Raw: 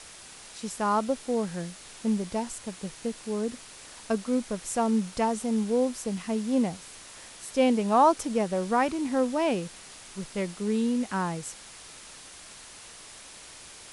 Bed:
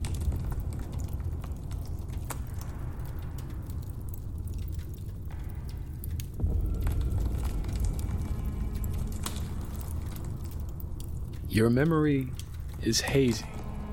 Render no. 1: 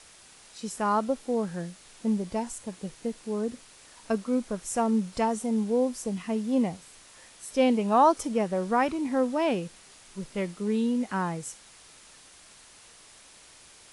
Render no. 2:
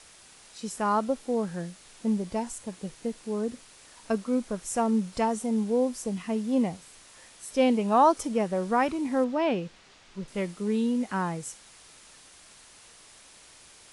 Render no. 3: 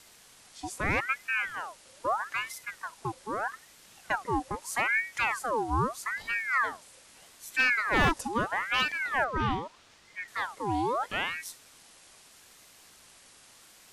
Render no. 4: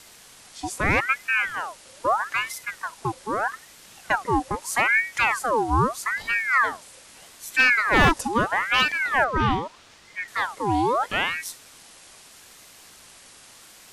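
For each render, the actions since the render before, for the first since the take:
noise print and reduce 6 dB
9.24–10.28 LPF 4700 Hz
one-sided fold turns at -18.5 dBFS; ring modulator with a swept carrier 1300 Hz, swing 60%, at 0.79 Hz
gain +7 dB

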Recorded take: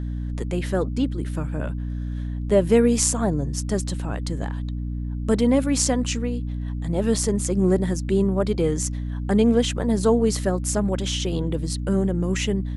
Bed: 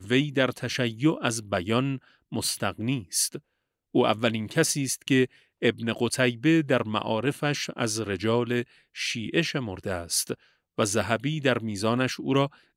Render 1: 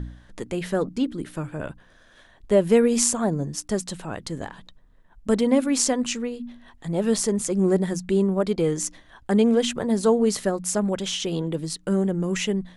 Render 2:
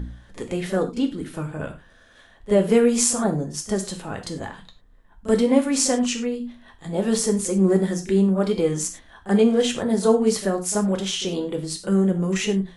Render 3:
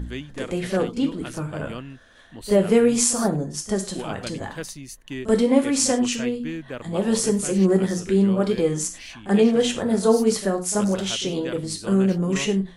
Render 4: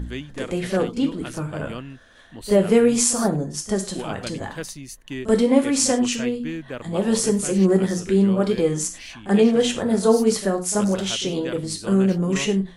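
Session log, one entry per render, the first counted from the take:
de-hum 60 Hz, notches 5
pre-echo 34 ms -15 dB; non-linear reverb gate 0.13 s falling, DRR 4 dB
add bed -11 dB
gain +1 dB; limiter -2 dBFS, peak gain reduction 1 dB

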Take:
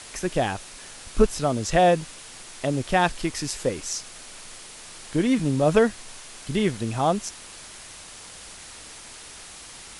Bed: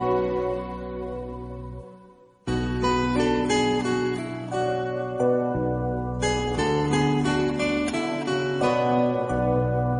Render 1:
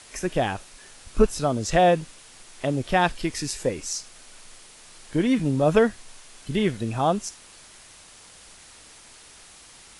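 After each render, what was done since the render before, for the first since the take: noise print and reduce 6 dB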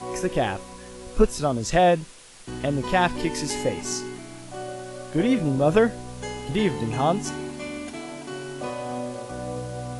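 add bed -9.5 dB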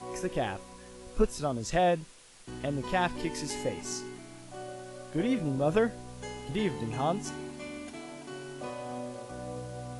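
gain -7.5 dB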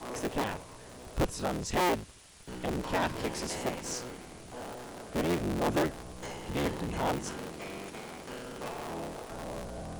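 cycle switcher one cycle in 3, inverted; soft clip -21.5 dBFS, distortion -15 dB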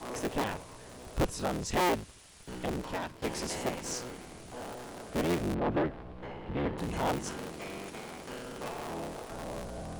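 2.64–3.22 fade out linear, to -17.5 dB; 5.54–6.78 air absorption 410 m

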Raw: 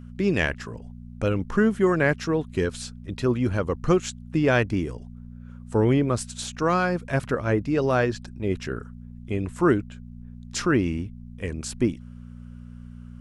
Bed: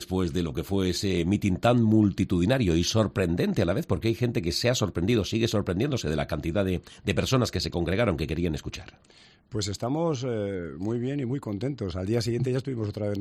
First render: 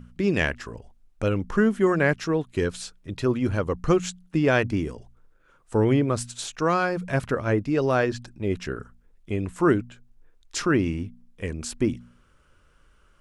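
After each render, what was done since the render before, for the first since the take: de-hum 60 Hz, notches 4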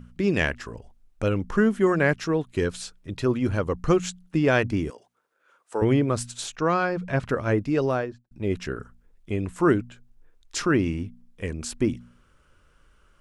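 4.9–5.82 HPF 490 Hz; 6.56–7.26 air absorption 91 m; 7.76–8.31 studio fade out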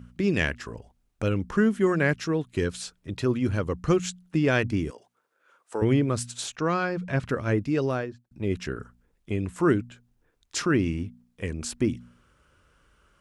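HPF 45 Hz; dynamic EQ 770 Hz, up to -5 dB, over -36 dBFS, Q 0.78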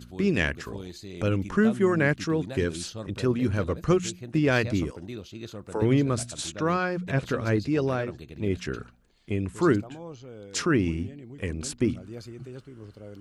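add bed -14.5 dB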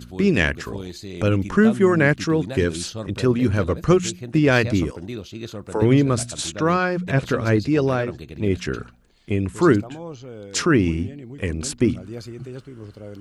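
gain +6 dB

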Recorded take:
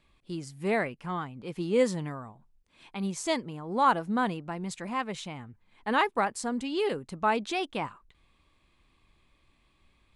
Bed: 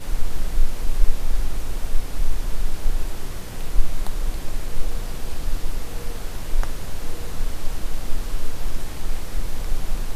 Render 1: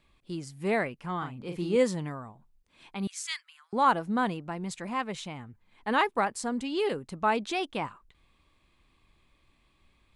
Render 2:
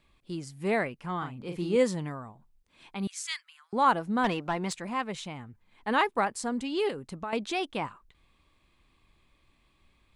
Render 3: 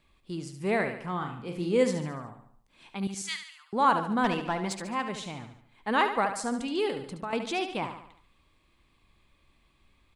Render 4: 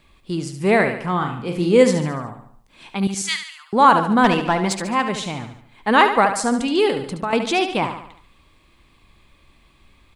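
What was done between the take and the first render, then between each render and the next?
1.18–1.76 doubler 40 ms -5.5 dB; 3.07–3.73 steep high-pass 1400 Hz
4.24–4.73 overdrive pedal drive 18 dB, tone 3600 Hz, clips at -17 dBFS; 6.9–7.33 compressor, threshold -32 dBFS
feedback echo 72 ms, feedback 48%, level -9 dB
gain +11 dB; limiter -1 dBFS, peak gain reduction 1.5 dB

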